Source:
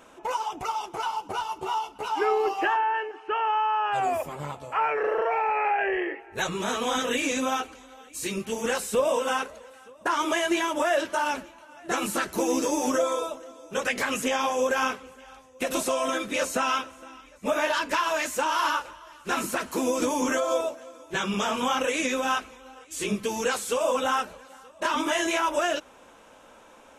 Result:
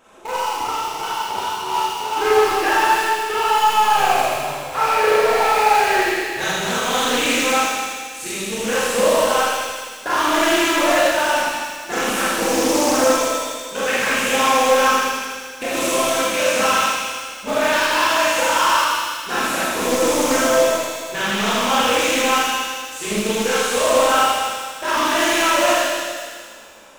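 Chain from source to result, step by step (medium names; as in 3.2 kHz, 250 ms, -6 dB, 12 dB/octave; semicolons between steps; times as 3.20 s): de-hum 48.58 Hz, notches 9; in parallel at -7.5 dB: bit crusher 4-bit; on the sum: feedback echo behind a high-pass 79 ms, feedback 76%, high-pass 2.3 kHz, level -3.5 dB; Schroeder reverb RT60 1.6 s, combs from 29 ms, DRR -8 dB; loudspeaker Doppler distortion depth 0.24 ms; trim -3 dB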